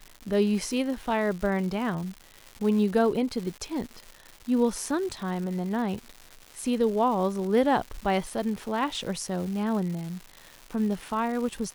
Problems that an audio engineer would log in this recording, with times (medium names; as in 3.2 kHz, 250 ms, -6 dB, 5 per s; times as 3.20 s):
crackle 310 per s -35 dBFS